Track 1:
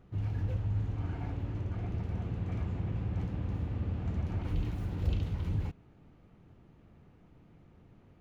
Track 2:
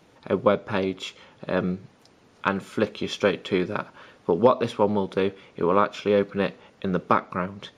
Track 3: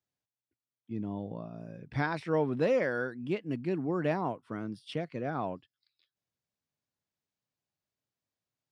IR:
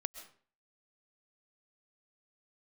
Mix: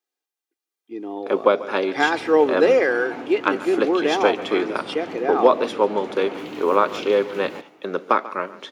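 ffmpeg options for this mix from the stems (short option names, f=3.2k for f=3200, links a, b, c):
-filter_complex "[0:a]adelay=1900,volume=2dB,asplit=2[a][b];[b]volume=-3dB[c];[1:a]agate=range=-11dB:threshold=-47dB:ratio=16:detection=peak,adelay=1000,volume=-3.5dB,asplit=2[d][e];[e]volume=-17.5dB[f];[2:a]aecho=1:1:2.5:0.6,volume=0.5dB,asplit=2[g][h];[h]volume=-6dB[i];[3:a]atrim=start_sample=2205[j];[c][i]amix=inputs=2:normalize=0[k];[k][j]afir=irnorm=-1:irlink=0[l];[f]aecho=0:1:141:1[m];[a][d][g][l][m]amix=inputs=5:normalize=0,highpass=f=290:w=0.5412,highpass=f=290:w=1.3066,dynaudnorm=f=630:g=3:m=9dB"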